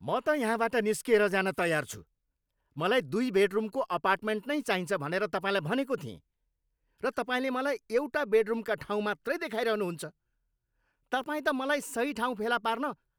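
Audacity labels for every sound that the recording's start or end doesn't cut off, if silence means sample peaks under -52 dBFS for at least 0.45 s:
2.760000	6.180000	sound
7.000000	10.100000	sound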